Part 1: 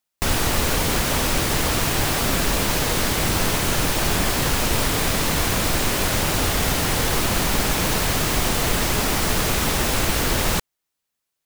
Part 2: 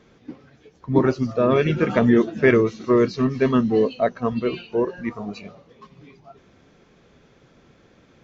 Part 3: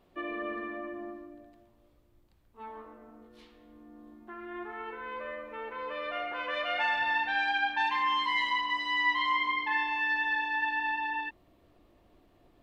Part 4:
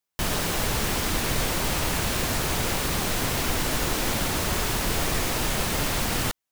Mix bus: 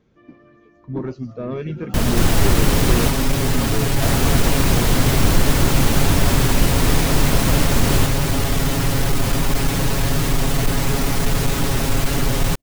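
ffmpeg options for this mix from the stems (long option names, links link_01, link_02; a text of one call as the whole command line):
ffmpeg -i stem1.wav -i stem2.wav -i stem3.wav -i stem4.wav -filter_complex "[0:a]aecho=1:1:7.3:0.87,asoftclip=type=tanh:threshold=-15dB,adelay=1950,volume=-3dB[link_01];[1:a]asoftclip=type=tanh:threshold=-10.5dB,volume=-12.5dB[link_02];[2:a]volume=-19dB[link_03];[3:a]adelay=1750,volume=1.5dB,asplit=3[link_04][link_05][link_06];[link_04]atrim=end=3.1,asetpts=PTS-STARTPTS,afade=type=out:start_time=3.096:duration=0.004:curve=hsin[link_07];[link_05]atrim=start=3.1:end=4.02,asetpts=PTS-STARTPTS,volume=0[link_08];[link_06]atrim=start=4.02,asetpts=PTS-STARTPTS,afade=type=in:duration=0.004:curve=hsin[link_09];[link_07][link_08][link_09]concat=n=3:v=0:a=1[link_10];[link_01][link_02][link_03][link_10]amix=inputs=4:normalize=0,lowshelf=frequency=350:gain=10" out.wav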